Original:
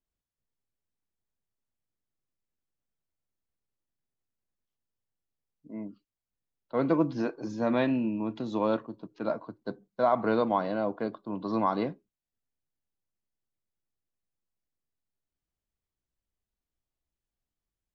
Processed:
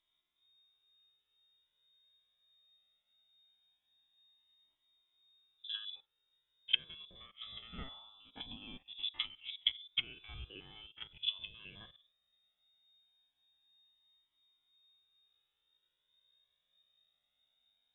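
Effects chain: spectrogram pixelated in time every 50 ms; in parallel at +2.5 dB: compression 6:1, threshold -36 dBFS, peak gain reduction 14.5 dB; on the sum: frequency inversion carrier 3.7 kHz; low-pass that closes with the level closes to 490 Hz, closed at -24.5 dBFS; Shepard-style flanger rising 0.21 Hz; trim +7 dB

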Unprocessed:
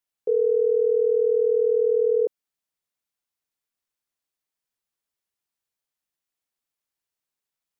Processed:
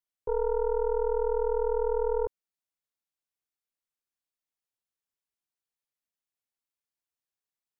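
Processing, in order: tracing distortion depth 0.24 ms; trim -7.5 dB

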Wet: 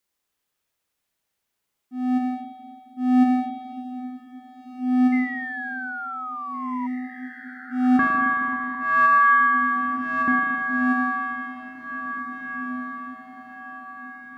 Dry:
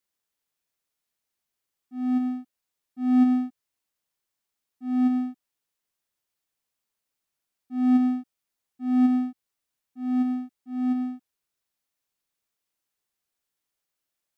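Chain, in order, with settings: 7.99–10.28 s: ring modulator 1.4 kHz; spring tank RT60 2.8 s, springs 38/54 ms, chirp 75 ms, DRR 0 dB; 5.12–6.87 s: painted sound fall 960–2100 Hz -36 dBFS; on a send: echo that smears into a reverb 1917 ms, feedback 42%, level -9.5 dB; on the sum: trim +4 dB

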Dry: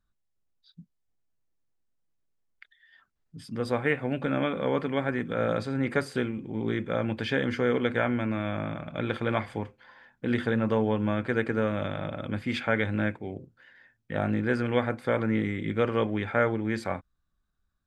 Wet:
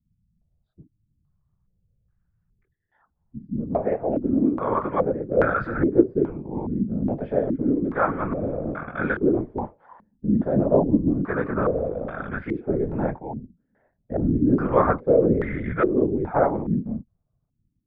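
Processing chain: chorus voices 6, 1.4 Hz, delay 20 ms, depth 3 ms; whisper effect; step-sequenced low-pass 2.4 Hz 220–1500 Hz; trim +3.5 dB

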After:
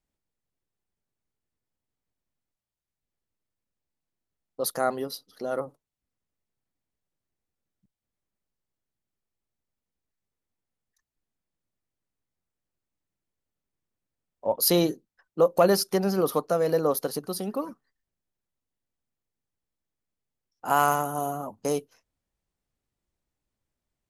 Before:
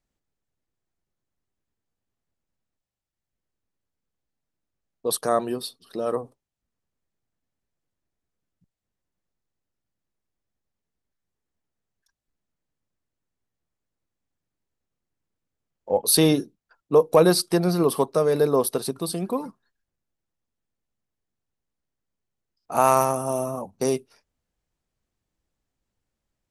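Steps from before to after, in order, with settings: tape speed +10%; trim -3.5 dB

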